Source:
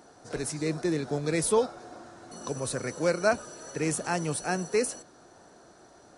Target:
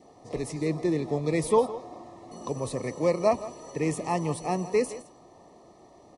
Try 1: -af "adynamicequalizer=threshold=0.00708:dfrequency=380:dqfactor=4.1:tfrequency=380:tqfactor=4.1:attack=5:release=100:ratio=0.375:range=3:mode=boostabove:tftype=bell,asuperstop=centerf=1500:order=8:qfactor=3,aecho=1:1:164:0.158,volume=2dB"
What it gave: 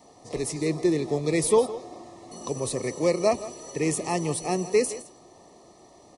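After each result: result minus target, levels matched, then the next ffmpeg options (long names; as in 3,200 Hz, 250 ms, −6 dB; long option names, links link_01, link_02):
8,000 Hz band +7.0 dB; 1,000 Hz band −3.0 dB
-af "adynamicequalizer=threshold=0.00708:dfrequency=380:dqfactor=4.1:tfrequency=380:tqfactor=4.1:attack=5:release=100:ratio=0.375:range=3:mode=boostabove:tftype=bell,asuperstop=centerf=1500:order=8:qfactor=3,highshelf=frequency=3200:gain=-10.5,aecho=1:1:164:0.158,volume=2dB"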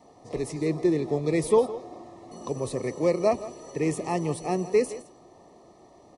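1,000 Hz band −3.0 dB
-af "adynamicequalizer=threshold=0.00708:dfrequency=990:dqfactor=4.1:tfrequency=990:tqfactor=4.1:attack=5:release=100:ratio=0.375:range=3:mode=boostabove:tftype=bell,asuperstop=centerf=1500:order=8:qfactor=3,highshelf=frequency=3200:gain=-10.5,aecho=1:1:164:0.158,volume=2dB"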